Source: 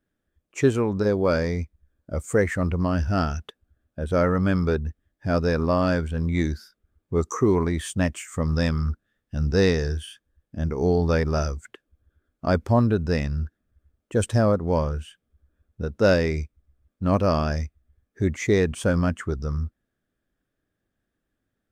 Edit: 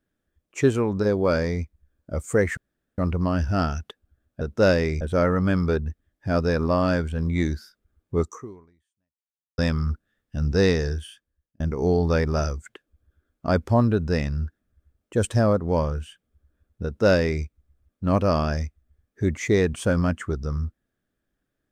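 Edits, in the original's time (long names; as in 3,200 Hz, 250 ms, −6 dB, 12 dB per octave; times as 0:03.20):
0:02.57: splice in room tone 0.41 s
0:07.20–0:08.57: fade out exponential
0:09.86–0:10.59: fade out
0:15.83–0:16.43: duplicate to 0:04.00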